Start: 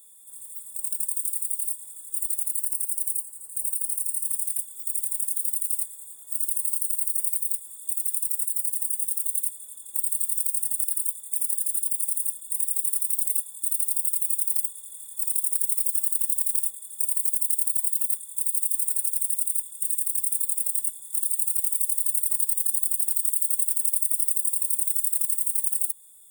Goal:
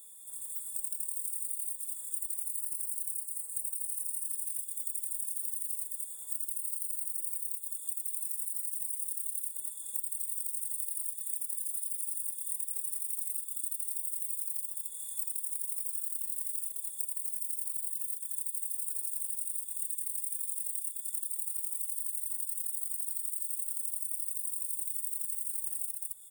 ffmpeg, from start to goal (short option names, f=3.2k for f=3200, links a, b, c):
-af "aecho=1:1:211:0.473,acompressor=threshold=-32dB:ratio=6"